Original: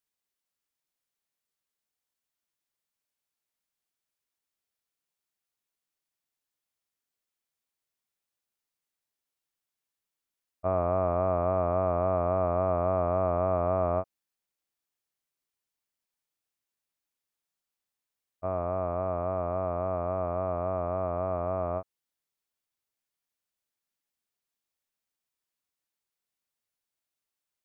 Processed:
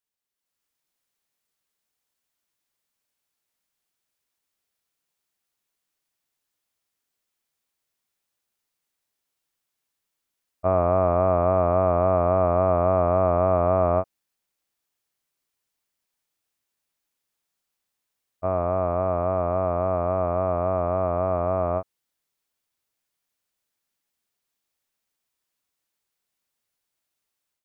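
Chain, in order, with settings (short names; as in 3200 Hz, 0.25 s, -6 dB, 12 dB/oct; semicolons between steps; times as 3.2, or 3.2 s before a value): AGC gain up to 9 dB; gain -2.5 dB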